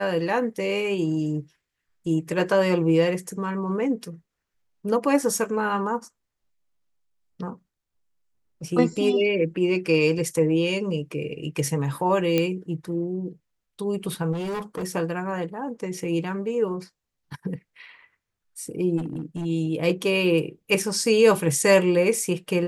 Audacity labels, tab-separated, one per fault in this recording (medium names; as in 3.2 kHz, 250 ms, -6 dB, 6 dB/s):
12.380000	12.380000	pop -9 dBFS
14.320000	14.840000	clipped -26.5 dBFS
18.970000	19.460000	clipped -25.5 dBFS